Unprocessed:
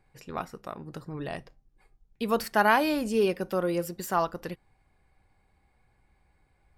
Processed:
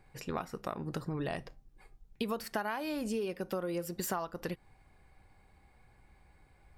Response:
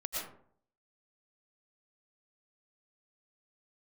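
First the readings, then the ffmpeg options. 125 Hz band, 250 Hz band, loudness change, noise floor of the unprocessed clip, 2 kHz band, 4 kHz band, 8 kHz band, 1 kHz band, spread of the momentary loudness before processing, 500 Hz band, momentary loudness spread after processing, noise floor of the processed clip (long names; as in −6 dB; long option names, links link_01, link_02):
−2.5 dB, −6.5 dB, −9.0 dB, −69 dBFS, −11.5 dB, −7.0 dB, −2.0 dB, −11.5 dB, 19 LU, −8.5 dB, 6 LU, −65 dBFS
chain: -af "acompressor=threshold=-36dB:ratio=16,volume=4.5dB"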